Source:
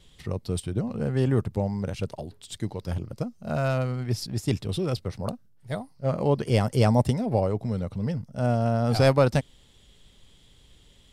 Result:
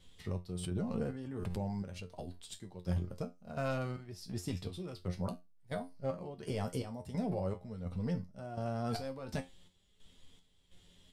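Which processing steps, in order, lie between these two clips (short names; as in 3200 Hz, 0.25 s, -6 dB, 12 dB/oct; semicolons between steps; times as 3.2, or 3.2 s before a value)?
limiter -19.5 dBFS, peak gain reduction 10.5 dB; chopper 1.4 Hz, depth 65%, duty 55%; resonator 89 Hz, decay 0.22 s, harmonics all, mix 80%; flange 0.88 Hz, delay 3.9 ms, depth 1.7 ms, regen +66%; 0.49–2.08 backwards sustainer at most 39 dB/s; gain +4 dB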